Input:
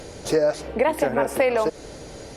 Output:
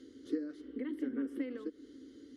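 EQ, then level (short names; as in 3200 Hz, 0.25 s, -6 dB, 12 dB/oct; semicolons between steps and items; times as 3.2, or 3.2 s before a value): dynamic EQ 5800 Hz, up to -8 dB, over -48 dBFS, Q 0.85; vowel filter i; fixed phaser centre 640 Hz, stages 6; +1.5 dB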